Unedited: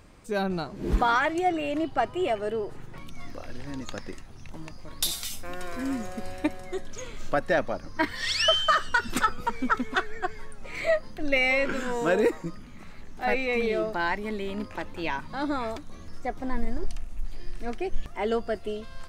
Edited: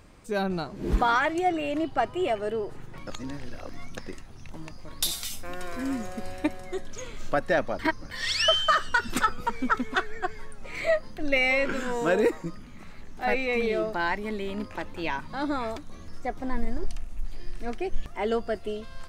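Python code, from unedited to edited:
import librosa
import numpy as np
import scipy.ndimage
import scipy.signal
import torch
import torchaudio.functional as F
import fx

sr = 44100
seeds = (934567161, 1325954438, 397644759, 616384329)

y = fx.edit(x, sr, fx.reverse_span(start_s=3.07, length_s=0.9),
    fx.reverse_span(start_s=7.79, length_s=0.32), tone=tone)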